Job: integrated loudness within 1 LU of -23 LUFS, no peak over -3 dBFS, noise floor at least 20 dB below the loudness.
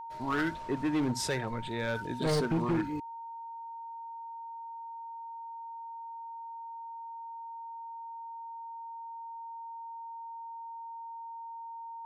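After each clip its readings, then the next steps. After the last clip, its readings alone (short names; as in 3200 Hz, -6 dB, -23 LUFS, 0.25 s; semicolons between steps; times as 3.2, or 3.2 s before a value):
clipped 1.2%; flat tops at -24.5 dBFS; steady tone 920 Hz; tone level -40 dBFS; loudness -37.0 LUFS; peak -24.5 dBFS; loudness target -23.0 LUFS
-> clip repair -24.5 dBFS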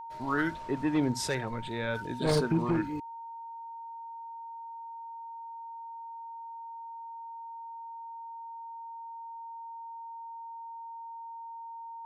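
clipped 0.0%; steady tone 920 Hz; tone level -40 dBFS
-> notch 920 Hz, Q 30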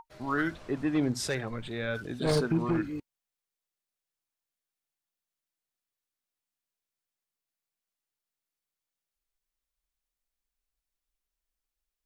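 steady tone none; loudness -31.0 LUFS; peak -15.0 dBFS; loudness target -23.0 LUFS
-> gain +8 dB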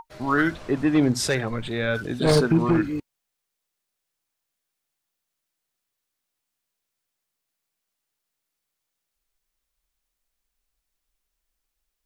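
loudness -23.0 LUFS; peak -7.0 dBFS; noise floor -82 dBFS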